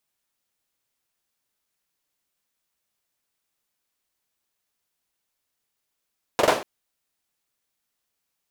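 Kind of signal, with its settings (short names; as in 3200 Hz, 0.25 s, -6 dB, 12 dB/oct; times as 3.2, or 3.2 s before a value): hand clap length 0.24 s, bursts 3, apart 44 ms, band 560 Hz, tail 0.39 s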